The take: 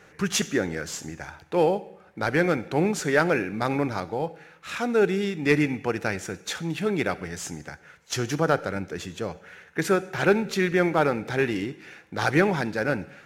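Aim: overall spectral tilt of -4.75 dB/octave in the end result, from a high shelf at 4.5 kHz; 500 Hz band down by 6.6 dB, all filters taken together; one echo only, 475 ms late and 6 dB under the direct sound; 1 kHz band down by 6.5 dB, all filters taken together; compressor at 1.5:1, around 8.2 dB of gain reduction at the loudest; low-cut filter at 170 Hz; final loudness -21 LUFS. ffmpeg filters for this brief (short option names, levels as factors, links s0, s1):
-af "highpass=170,equalizer=f=500:t=o:g=-7,equalizer=f=1000:t=o:g=-6.5,highshelf=f=4500:g=-8,acompressor=threshold=0.00708:ratio=1.5,aecho=1:1:475:0.501,volume=5.96"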